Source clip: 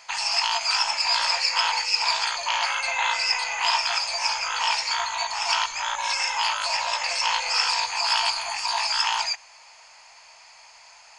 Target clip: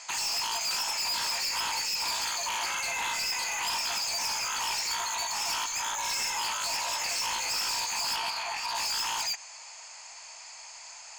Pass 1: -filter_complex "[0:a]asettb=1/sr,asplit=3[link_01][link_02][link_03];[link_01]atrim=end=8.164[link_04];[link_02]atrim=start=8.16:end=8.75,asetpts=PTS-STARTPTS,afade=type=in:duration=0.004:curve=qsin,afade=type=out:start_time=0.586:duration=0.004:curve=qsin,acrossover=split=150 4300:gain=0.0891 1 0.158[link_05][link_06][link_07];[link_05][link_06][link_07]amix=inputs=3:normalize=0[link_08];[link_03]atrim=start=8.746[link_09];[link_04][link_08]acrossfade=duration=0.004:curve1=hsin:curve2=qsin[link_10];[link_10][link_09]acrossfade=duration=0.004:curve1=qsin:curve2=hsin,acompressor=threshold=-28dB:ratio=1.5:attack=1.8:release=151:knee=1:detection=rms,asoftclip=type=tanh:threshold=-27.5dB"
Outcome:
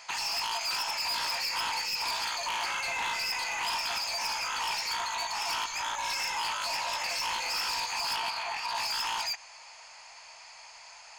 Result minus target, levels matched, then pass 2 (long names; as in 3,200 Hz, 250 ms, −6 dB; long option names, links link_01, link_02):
8,000 Hz band −5.0 dB
-filter_complex "[0:a]asettb=1/sr,asplit=3[link_01][link_02][link_03];[link_01]atrim=end=8.164[link_04];[link_02]atrim=start=8.16:end=8.75,asetpts=PTS-STARTPTS,afade=type=in:duration=0.004:curve=qsin,afade=type=out:start_time=0.586:duration=0.004:curve=qsin,acrossover=split=150 4300:gain=0.0891 1 0.158[link_05][link_06][link_07];[link_05][link_06][link_07]amix=inputs=3:normalize=0[link_08];[link_03]atrim=start=8.746[link_09];[link_04][link_08]acrossfade=duration=0.004:curve1=hsin:curve2=qsin[link_10];[link_10][link_09]acrossfade=duration=0.004:curve1=qsin:curve2=hsin,acompressor=threshold=-28dB:ratio=1.5:attack=1.8:release=151:knee=1:detection=rms,lowpass=frequency=7700:width_type=q:width=4.2,asoftclip=type=tanh:threshold=-27.5dB"